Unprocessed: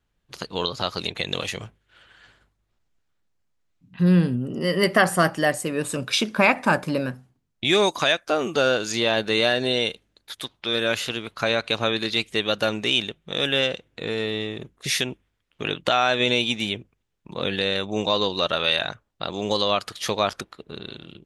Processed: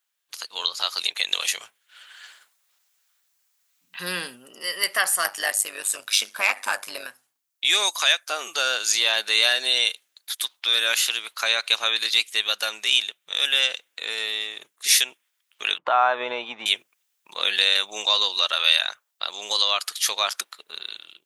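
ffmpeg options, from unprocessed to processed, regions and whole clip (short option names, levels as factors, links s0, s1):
-filter_complex "[0:a]asettb=1/sr,asplit=3[s0][s1][s2];[s0]atrim=end=5.244[s3];[s1]atrim=start=5.24:end=7.07,asetpts=PTS-STARTPTS,afade=t=in:d=0.004:c=qsin,afade=t=out:st=1.826:d=0.004:c=qsin,tremolo=f=100:d=0.824,acontrast=78[s4];[s2]atrim=start=7.066[s5];[s3][s4]acrossfade=d=0.004:c1=hsin:c2=qsin[s6];[s6][s5]acrossfade=d=0.004:c1=qsin:c2=hsin,asettb=1/sr,asplit=3[s7][s8][s9];[s7]atrim=end=15.784[s10];[s8]atrim=start=15.78:end=16.66,asetpts=PTS-STARTPTS,afade=t=in:d=0.004:c=qsin,afade=t=out:st=0.876:d=0.004:c=qsin,lowpass=f=1000:t=q:w=2.1,lowshelf=f=210:g=8[s11];[s9]atrim=start=16.656[s12];[s10][s11]acrossfade=d=0.004:c1=hsin:c2=qsin[s13];[s13][s12]acrossfade=d=0.004:c1=qsin:c2=hsin,highpass=1000,aemphasis=mode=production:type=75kf,dynaudnorm=f=200:g=7:m=3.76,volume=0.631"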